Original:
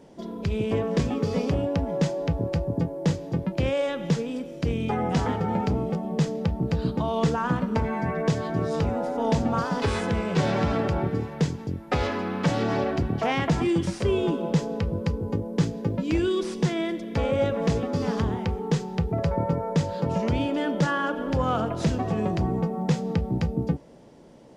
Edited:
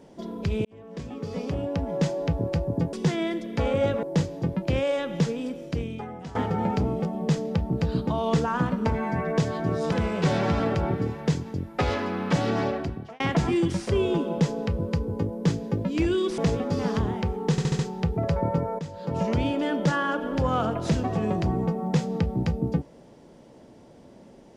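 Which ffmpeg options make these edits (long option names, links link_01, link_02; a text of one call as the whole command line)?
ffmpeg -i in.wav -filter_complex "[0:a]asplit=13[link_01][link_02][link_03][link_04][link_05][link_06][link_07][link_08][link_09][link_10][link_11][link_12][link_13];[link_01]atrim=end=0.65,asetpts=PTS-STARTPTS,afade=type=out:start_time=0.646:duration=0.004:curve=hsin[link_14];[link_02]atrim=start=0.65:end=2.932,asetpts=PTS-STARTPTS,afade=type=in:duration=1.47[link_15];[link_03]atrim=start=16.508:end=17.612[link_16];[link_04]atrim=start=2.928:end=5.25,asetpts=PTS-STARTPTS,afade=type=out:start_time=1.602:duration=0.72:curve=qua:silence=0.16788[link_17];[link_05]atrim=start=5.25:end=8.822,asetpts=PTS-STARTPTS,afade=type=in:duration=0.004:curve=hsin:silence=0.16788[link_18];[link_06]atrim=start=10.048:end=13.33,asetpts=PTS-STARTPTS,afade=type=out:start_time=2.672:duration=0.61[link_19];[link_07]atrim=start=13.33:end=16.512,asetpts=PTS-STARTPTS,afade=type=in:duration=0.004:curve=hsin[link_20];[link_08]atrim=start=17.608:end=18.812[link_21];[link_09]atrim=start=18.738:end=18.812[link_22];[link_10]atrim=start=18.738:end=18.812[link_23];[link_11]atrim=start=18.738:end=18.812[link_24];[link_12]atrim=start=18.738:end=19.74,asetpts=PTS-STARTPTS,afade=type=out:start_time=0.998:duration=0.004:curve=hsin:silence=0.237137[link_25];[link_13]atrim=start=19.74,asetpts=PTS-STARTPTS,afade=type=in:duration=0.41:curve=qua:silence=0.237137[link_26];[link_14][link_15]concat=n=2:v=0:a=1[link_27];[link_27][link_16]acrossfade=duration=0.004:curve1=hsin:curve2=hsin[link_28];[link_17][link_18]concat=n=2:v=0:a=1[link_29];[link_28][link_29]acrossfade=duration=0.004:curve1=hsin:curve2=hsin[link_30];[link_19][link_20]concat=n=2:v=0:a=1[link_31];[link_30][link_31]acrossfade=duration=0.004:curve1=hsin:curve2=hsin[link_32];[link_32][link_21]acrossfade=duration=0.004:curve1=hsin:curve2=hsin[link_33];[link_33][link_22]acrossfade=duration=0.004:curve1=hsin:curve2=hsin[link_34];[link_34][link_23]acrossfade=duration=0.004:curve1=hsin:curve2=hsin[link_35];[link_35][link_24]acrossfade=duration=0.004:curve1=hsin:curve2=hsin[link_36];[link_25][link_26]concat=n=2:v=0:a=1[link_37];[link_36][link_37]acrossfade=duration=0.004:curve1=hsin:curve2=hsin" out.wav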